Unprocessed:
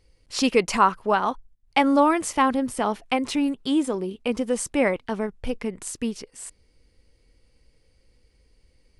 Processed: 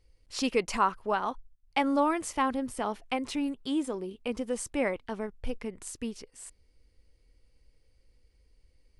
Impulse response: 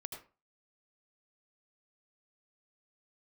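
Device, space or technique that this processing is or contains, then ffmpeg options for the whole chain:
low shelf boost with a cut just above: -af "lowshelf=f=80:g=6.5,equalizer=f=170:t=o:w=0.75:g=-3.5,volume=-7.5dB"

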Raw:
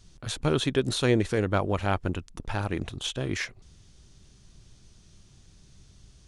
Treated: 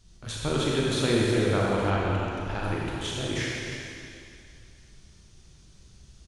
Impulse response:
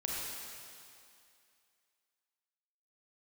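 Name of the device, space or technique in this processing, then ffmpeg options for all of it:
cave: -filter_complex "[0:a]aecho=1:1:309:0.316[a];[1:a]atrim=start_sample=2205[b];[a][b]afir=irnorm=-1:irlink=0,asettb=1/sr,asplit=3[c][d][e];[c]atrim=end=1.904[f];[d]atrim=start=1.9:end=2.64,asetpts=PTS-STARTPTS,afade=t=in:d=0.004:c=qsin,afade=t=out:st=0.736:d=0.004:c=qsin,lowpass=6.6k[g];[e]atrim=start=2.636[h];[f][g]acrossfade=d=0.004:c1=hsin:c2=qsin[i];[i][h]acrossfade=d=0.004:c1=qsin:c2=hsin,volume=-2.5dB"

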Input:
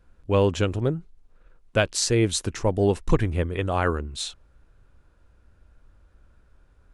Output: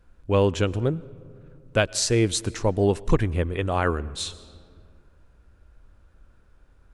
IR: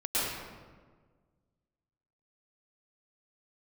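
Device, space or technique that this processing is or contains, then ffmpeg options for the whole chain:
ducked reverb: -filter_complex "[0:a]asplit=3[a][b][c];[1:a]atrim=start_sample=2205[d];[b][d]afir=irnorm=-1:irlink=0[e];[c]apad=whole_len=305841[f];[e][f]sidechaincompress=threshold=-33dB:ratio=5:attack=22:release=930,volume=-17.5dB[g];[a][g]amix=inputs=2:normalize=0"

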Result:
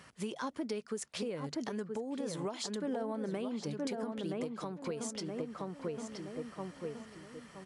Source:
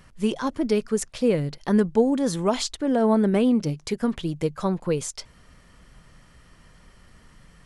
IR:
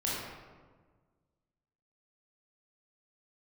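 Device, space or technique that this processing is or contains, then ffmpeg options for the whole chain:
podcast mastering chain: -filter_complex "[0:a]highpass=f=290:p=1,asettb=1/sr,asplit=3[a][b][c];[a]atrim=end=1.444[d];[b]atrim=start=1.44:end=1.86,asetpts=PTS-STARTPTS,afade=t=in:d=0.004:c=qsin,afade=t=out:st=0.416:d=0.004:c=qsin,equalizer=f=6.8k:w=2.6:g=9.5[e];[c]atrim=start=1.856[f];[d][e]acrossfade=d=0.004:c1=hsin:c2=qsin[g];[g][f]acrossfade=d=0.004:c1=qsin:c2=hsin,highpass=62,asplit=2[h][i];[i]adelay=972,lowpass=f=1.9k:p=1,volume=-6dB,asplit=2[j][k];[k]adelay=972,lowpass=f=1.9k:p=1,volume=0.37,asplit=2[l][m];[m]adelay=972,lowpass=f=1.9k:p=1,volume=0.37,asplit=2[n][o];[o]adelay=972,lowpass=f=1.9k:p=1,volume=0.37[p];[h][j][l][n][p]amix=inputs=5:normalize=0,acompressor=threshold=-33dB:ratio=4,alimiter=level_in=4dB:limit=-24dB:level=0:latency=1:release=408,volume=-4dB,volume=1dB" -ar 24000 -c:a libmp3lame -b:a 96k

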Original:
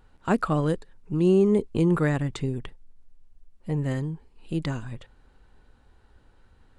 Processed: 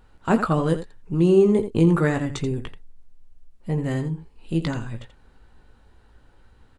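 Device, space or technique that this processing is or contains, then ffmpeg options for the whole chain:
slapback doubling: -filter_complex "[0:a]asettb=1/sr,asplit=3[a][b][c];[a]atrim=end=1.904[d];[b]atrim=start=1.9:end=2.46,asetpts=PTS-STARTPTS,afade=t=in:d=0.004:c=qsin,afade=t=out:st=0.556:d=0.004:c=qsin,equalizer=f=5.9k:w=6.6:g=7[e];[c]atrim=start=2.456[f];[d][e]acrossfade=d=0.004:c1=hsin:c2=qsin[g];[g][f]acrossfade=d=0.004:c1=qsin:c2=hsin,asplit=3[h][i][j];[i]adelay=18,volume=-7dB[k];[j]adelay=84,volume=-11dB[l];[h][k][l]amix=inputs=3:normalize=0,volume=2.5dB"

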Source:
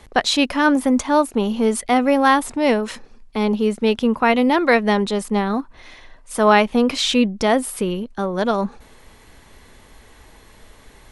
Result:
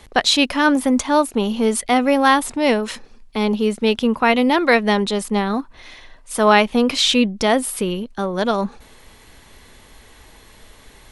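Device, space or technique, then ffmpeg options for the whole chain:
presence and air boost: -af "equalizer=f=3.5k:t=o:w=1.4:g=3.5,highshelf=f=9.1k:g=5.5"

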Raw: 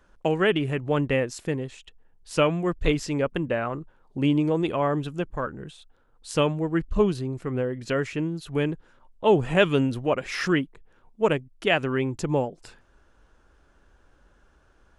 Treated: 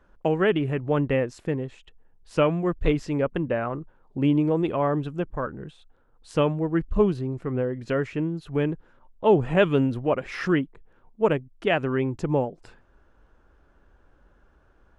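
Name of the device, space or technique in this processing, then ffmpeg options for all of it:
through cloth: -af "highshelf=f=3.3k:g=-14,volume=1dB"

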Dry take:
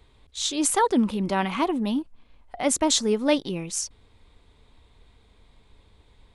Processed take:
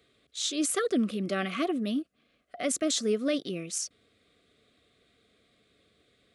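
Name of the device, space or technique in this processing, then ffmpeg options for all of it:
PA system with an anti-feedback notch: -af "highpass=190,asuperstop=centerf=910:order=8:qfactor=2.4,alimiter=limit=-16dB:level=0:latency=1:release=39,volume=-3dB"

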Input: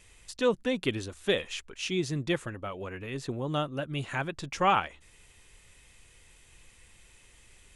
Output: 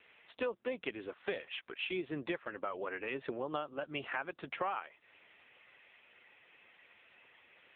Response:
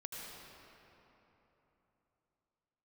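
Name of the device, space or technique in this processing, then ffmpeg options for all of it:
voicemail: -filter_complex "[0:a]asplit=3[a][b][c];[a]afade=t=out:st=0.64:d=0.02[d];[b]equalizer=f=5.5k:t=o:w=0.73:g=-5.5,afade=t=in:st=0.64:d=0.02,afade=t=out:st=1.24:d=0.02[e];[c]afade=t=in:st=1.24:d=0.02[f];[d][e][f]amix=inputs=3:normalize=0,highpass=430,lowpass=2.7k,acompressor=threshold=-39dB:ratio=8,volume=6dB" -ar 8000 -c:a libopencore_amrnb -b:a 6700

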